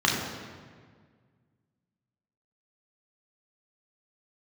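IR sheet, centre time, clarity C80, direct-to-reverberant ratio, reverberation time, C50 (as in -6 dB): 71 ms, 4.0 dB, -3.0 dB, 1.7 s, 2.0 dB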